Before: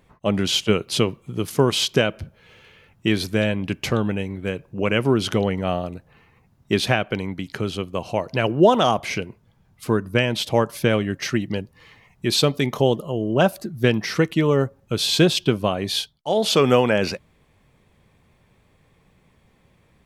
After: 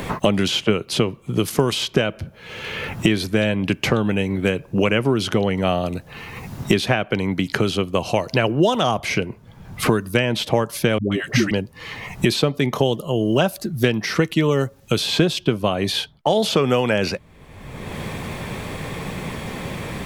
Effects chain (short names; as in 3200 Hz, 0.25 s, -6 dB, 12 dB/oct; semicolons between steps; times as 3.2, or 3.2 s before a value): 10.98–11.51 dispersion highs, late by 0.137 s, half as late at 400 Hz; three-band squash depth 100%; gain +1 dB